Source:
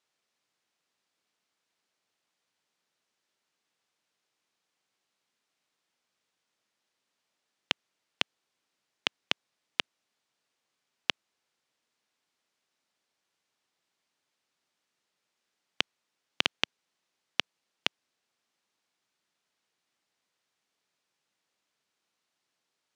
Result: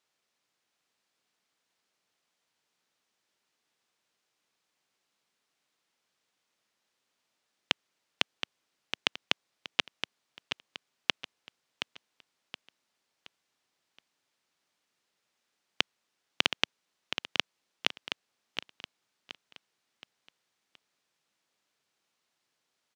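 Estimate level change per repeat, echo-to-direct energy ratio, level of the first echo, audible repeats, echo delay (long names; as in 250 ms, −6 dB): −8.5 dB, −7.5 dB, −8.0 dB, 4, 722 ms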